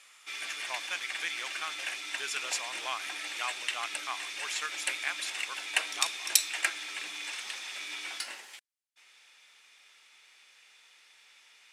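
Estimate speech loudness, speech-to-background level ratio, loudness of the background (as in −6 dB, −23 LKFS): −38.5 LKFS, −4.5 dB, −34.0 LKFS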